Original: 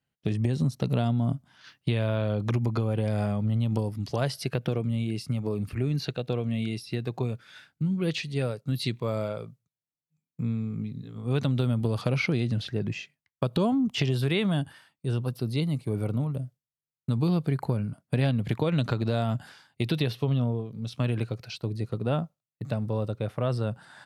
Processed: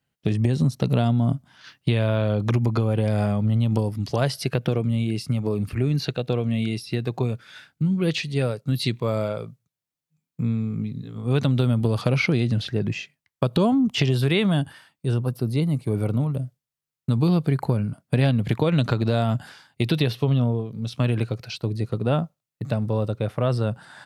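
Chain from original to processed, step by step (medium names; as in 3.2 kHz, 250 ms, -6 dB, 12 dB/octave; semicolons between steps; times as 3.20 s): 15.14–15.82 s: peaking EQ 3.6 kHz -7 dB 1.5 oct; trim +5 dB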